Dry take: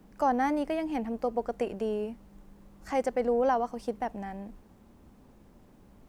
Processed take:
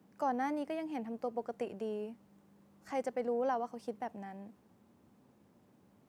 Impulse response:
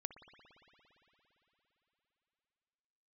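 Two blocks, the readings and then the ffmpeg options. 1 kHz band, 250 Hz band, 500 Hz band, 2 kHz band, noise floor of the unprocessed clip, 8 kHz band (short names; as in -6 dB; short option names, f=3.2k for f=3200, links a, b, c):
-7.5 dB, -7.5 dB, -7.5 dB, -7.5 dB, -57 dBFS, n/a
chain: -af "highpass=f=96:w=0.5412,highpass=f=96:w=1.3066,volume=-7.5dB"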